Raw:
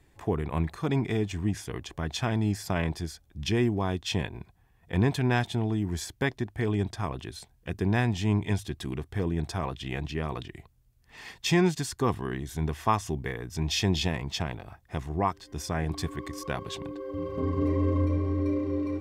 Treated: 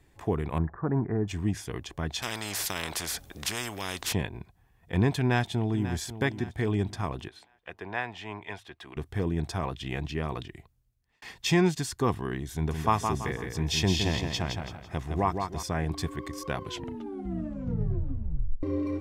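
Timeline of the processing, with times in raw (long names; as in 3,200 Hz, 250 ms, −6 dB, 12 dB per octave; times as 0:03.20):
0:00.58–0:01.28: Chebyshev low-pass filter 1,700 Hz, order 5
0:02.22–0:04.13: every bin compressed towards the loudest bin 4 to 1
0:05.19–0:05.97: delay throw 540 ms, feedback 40%, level −12.5 dB
0:07.28–0:08.97: three-way crossover with the lows and the highs turned down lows −20 dB, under 510 Hz, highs −16 dB, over 3,300 Hz
0:10.40–0:11.22: fade out
0:12.54–0:15.63: repeating echo 166 ms, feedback 35%, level −5.5 dB
0:16.57: tape stop 2.06 s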